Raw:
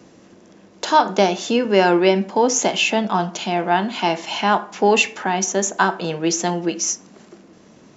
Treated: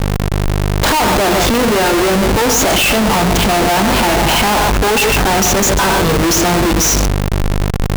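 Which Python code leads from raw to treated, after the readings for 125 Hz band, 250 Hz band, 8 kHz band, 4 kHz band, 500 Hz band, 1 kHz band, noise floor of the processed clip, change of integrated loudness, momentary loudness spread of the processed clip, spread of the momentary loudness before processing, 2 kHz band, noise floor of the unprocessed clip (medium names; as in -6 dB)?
+14.5 dB, +7.0 dB, no reading, +9.0 dB, +4.5 dB, +5.0 dB, -15 dBFS, +6.5 dB, 6 LU, 7 LU, +8.0 dB, -49 dBFS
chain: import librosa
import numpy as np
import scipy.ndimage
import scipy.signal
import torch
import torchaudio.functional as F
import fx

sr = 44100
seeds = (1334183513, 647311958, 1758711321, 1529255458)

y = fx.echo_multitap(x, sr, ms=(91, 134, 141), db=(-16.0, -19.0, -14.0))
y = fx.add_hum(y, sr, base_hz=50, snr_db=15)
y = fx.schmitt(y, sr, flips_db=-30.0)
y = F.gain(torch.from_numpy(y), 7.5).numpy()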